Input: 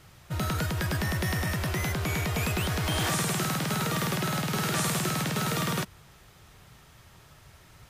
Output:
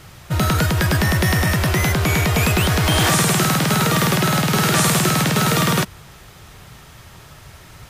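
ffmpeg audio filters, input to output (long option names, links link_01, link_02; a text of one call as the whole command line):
ffmpeg -i in.wav -af "acontrast=67,volume=5dB" out.wav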